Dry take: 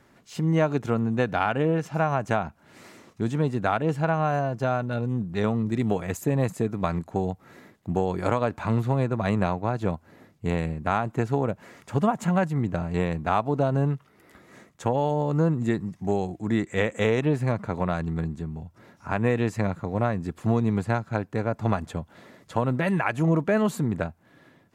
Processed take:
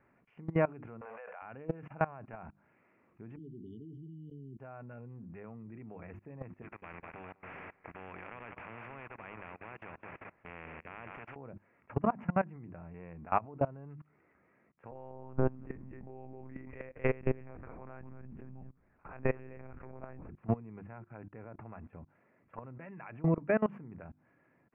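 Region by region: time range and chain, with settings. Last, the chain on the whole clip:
0:01.01–0:01.42: one scale factor per block 7 bits + elliptic high-pass filter 500 Hz + envelope flattener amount 100%
0:03.36–0:04.59: linear-phase brick-wall band-stop 430–2,900 Hz + low-shelf EQ 150 Hz −10.5 dB
0:06.62–0:11.36: downward compressor 2 to 1, threshold −35 dBFS + repeating echo 200 ms, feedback 50%, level −13 dB + every bin compressed towards the loudest bin 4 to 1
0:14.91–0:20.29: single-tap delay 238 ms −12 dB + one-pitch LPC vocoder at 8 kHz 130 Hz
whole clip: elliptic low-pass filter 2,500 Hz, stop band 40 dB; mains-hum notches 50/100/150/200/250/300/350 Hz; output level in coarse steps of 22 dB; level −3.5 dB

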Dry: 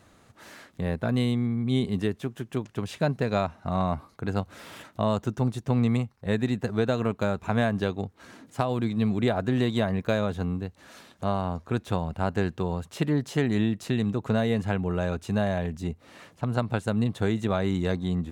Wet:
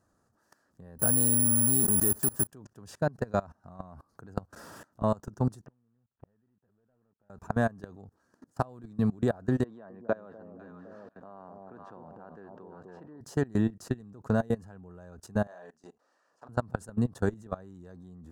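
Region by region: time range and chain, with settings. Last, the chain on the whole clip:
0:00.99–0:02.47: converter with a step at zero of −29.5 dBFS + parametric band 5,900 Hz −3.5 dB 0.24 octaves + bad sample-rate conversion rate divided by 4×, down none, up zero stuff
0:05.66–0:07.30: variable-slope delta modulation 16 kbit/s + gate with flip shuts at −29 dBFS, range −34 dB
0:09.64–0:13.21: band-pass filter 250–2,200 Hz + delay that swaps between a low-pass and a high-pass 255 ms, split 830 Hz, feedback 55%, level −5 dB
0:15.47–0:16.49: double-tracking delay 39 ms −6 dB + downward compressor 4 to 1, threshold −31 dBFS + band-pass filter 540–7,100 Hz
whole clip: flat-topped bell 2,900 Hz −13 dB 1.1 octaves; notch filter 2,100 Hz, Q 6.6; output level in coarse steps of 24 dB

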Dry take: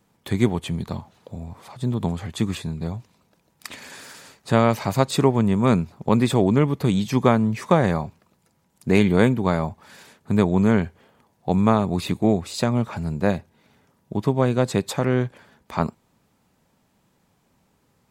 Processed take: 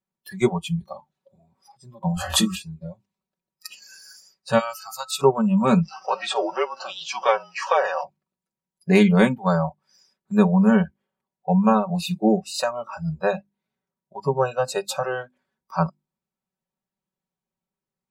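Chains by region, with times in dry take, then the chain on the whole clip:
0:02.14–0:02.56: high-shelf EQ 9,100 Hz +6.5 dB + double-tracking delay 22 ms −2.5 dB + background raised ahead of every attack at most 32 dB per second
0:04.58–0:05.20: guitar amp tone stack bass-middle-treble 10-0-10 + steady tone 1,300 Hz −48 dBFS
0:05.83–0:08.04: converter with a step at zero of −28.5 dBFS + frequency shifter −40 Hz + band-pass filter 430–5,800 Hz
whole clip: mains-hum notches 50/100/150/200/250/300/350 Hz; noise reduction from a noise print of the clip's start 27 dB; comb filter 5.3 ms, depth 76%

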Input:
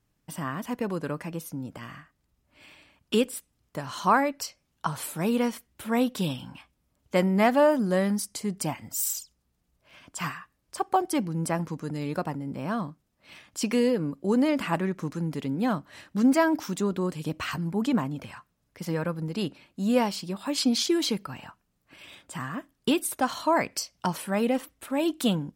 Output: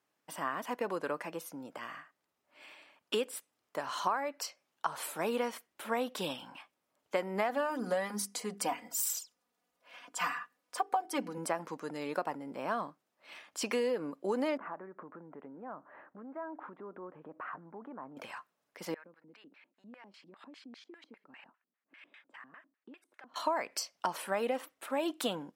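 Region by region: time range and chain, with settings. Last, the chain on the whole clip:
0:07.49–0:11.38: mains-hum notches 50/100/150/200/250/300/350/400/450 Hz + comb filter 4.1 ms, depth 69%
0:14.57–0:18.17: inverse Chebyshev low-pass filter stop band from 6,400 Hz, stop band 70 dB + downward compressor 5 to 1, threshold −38 dBFS
0:18.94–0:23.36: downward compressor 10 to 1, threshold −37 dBFS + auto-filter band-pass square 5 Hz 240–1,900 Hz
whole clip: high-pass filter 500 Hz 12 dB per octave; high-shelf EQ 2,800 Hz −8 dB; downward compressor 8 to 1, threshold −30 dBFS; level +2 dB

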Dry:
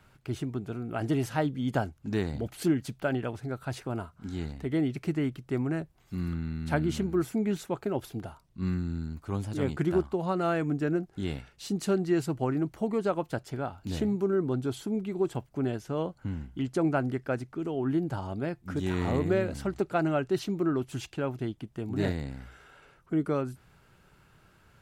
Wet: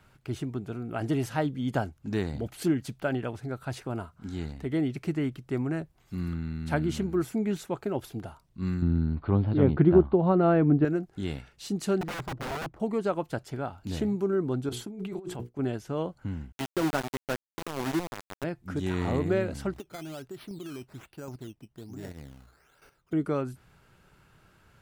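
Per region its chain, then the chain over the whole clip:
0:08.82–0:10.85: Butterworth low-pass 4,400 Hz 72 dB per octave + tilt shelving filter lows +8.5 dB, about 1,400 Hz + one half of a high-frequency compander encoder only
0:12.01–0:12.80: running median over 15 samples + wrap-around overflow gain 27.5 dB + high-shelf EQ 3,300 Hz −11.5 dB
0:14.69–0:15.59: mains-hum notches 60/120/180/240/300/360/420/480 Hz + downward expander −43 dBFS + compressor whose output falls as the input rises −37 dBFS
0:16.52–0:18.44: high-pass filter 160 Hz + notch filter 690 Hz, Q 18 + centre clipping without the shift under −27.5 dBFS
0:19.74–0:23.13: square-wave tremolo 1.3 Hz, depth 65%, duty 10% + downward compressor 16 to 1, threshold −35 dBFS + sample-and-hold swept by an LFO 11× 1.2 Hz
whole clip: no processing

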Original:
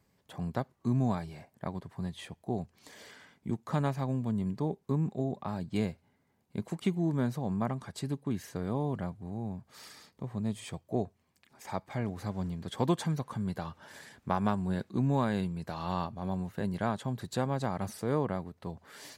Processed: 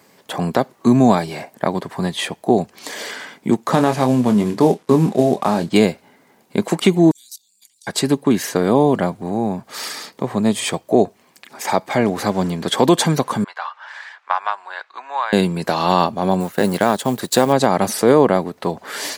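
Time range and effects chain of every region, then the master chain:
0:03.74–0:05.69: variable-slope delta modulation 64 kbit/s + high-shelf EQ 6,000 Hz −5.5 dB + double-tracking delay 24 ms −8.5 dB
0:07.11–0:07.87: inverse Chebyshev high-pass filter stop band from 1,400 Hz, stop band 60 dB + output level in coarse steps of 14 dB
0:13.44–0:15.33: high-pass filter 980 Hz 24 dB per octave + head-to-tape spacing loss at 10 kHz 30 dB
0:16.40–0:17.53: mu-law and A-law mismatch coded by A + high-shelf EQ 7,300 Hz +8.5 dB
whole clip: high-pass filter 280 Hz 12 dB per octave; dynamic equaliser 1,300 Hz, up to −4 dB, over −44 dBFS, Q 0.8; boost into a limiter +23.5 dB; level −1 dB

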